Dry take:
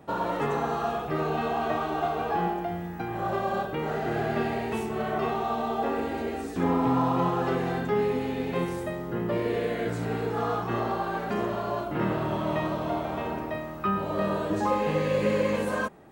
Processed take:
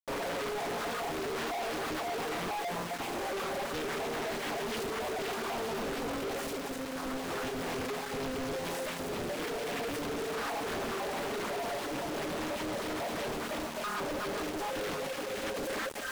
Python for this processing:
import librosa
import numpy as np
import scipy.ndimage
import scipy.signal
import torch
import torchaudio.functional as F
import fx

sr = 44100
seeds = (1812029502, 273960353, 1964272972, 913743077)

p1 = fx.peak_eq(x, sr, hz=8400.0, db=15.0, octaves=1.8)
p2 = fx.volume_shaper(p1, sr, bpm=101, per_beat=1, depth_db=-9, release_ms=125.0, shape='fast start')
p3 = p1 + (p2 * 10.0 ** (0.0 / 20.0))
p4 = fx.filter_lfo_notch(p3, sr, shape='saw_down', hz=2.0, low_hz=670.0, high_hz=1600.0, q=0.98)
p5 = fx.over_compress(p4, sr, threshold_db=-24.0, ratio=-0.5)
p6 = fx.bass_treble(p5, sr, bass_db=-4, treble_db=-14)
p7 = fx.notch(p6, sr, hz=360.0, q=12.0)
p8 = p7 + 0.44 * np.pad(p7, (int(7.2 * sr / 1000.0), 0))[:len(p7)]
p9 = p8 + fx.echo_split(p8, sr, split_hz=520.0, low_ms=133, high_ms=255, feedback_pct=52, wet_db=-5, dry=0)
p10 = fx.dereverb_blind(p9, sr, rt60_s=1.4)
p11 = scipy.signal.sosfilt(scipy.signal.butter(4, 190.0, 'highpass', fs=sr, output='sos'), p10)
p12 = fx.quant_companded(p11, sr, bits=2)
p13 = fx.doppler_dist(p12, sr, depth_ms=0.91)
y = p13 * 10.0 ** (-9.0 / 20.0)